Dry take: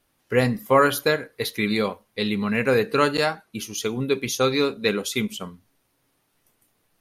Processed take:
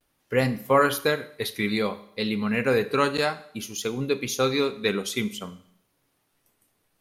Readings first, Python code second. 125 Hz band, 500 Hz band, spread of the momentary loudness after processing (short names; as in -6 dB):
-2.5 dB, -2.5 dB, 10 LU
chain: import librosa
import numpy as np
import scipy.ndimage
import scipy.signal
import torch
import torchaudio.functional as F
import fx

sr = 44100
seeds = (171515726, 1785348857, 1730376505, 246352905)

y = fx.vibrato(x, sr, rate_hz=0.56, depth_cents=44.0)
y = fx.rev_schroeder(y, sr, rt60_s=0.67, comb_ms=30, drr_db=14.5)
y = F.gain(torch.from_numpy(y), -2.5).numpy()